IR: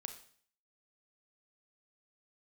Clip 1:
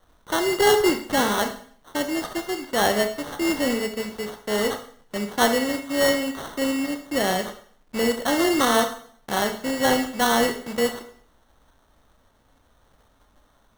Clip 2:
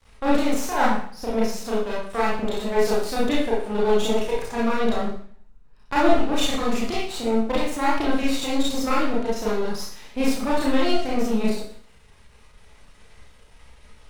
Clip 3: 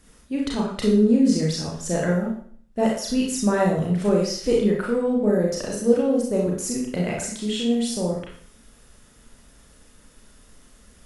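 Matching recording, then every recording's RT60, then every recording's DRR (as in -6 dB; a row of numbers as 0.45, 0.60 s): 1; 0.50, 0.50, 0.50 s; 6.5, -7.5, -3.0 dB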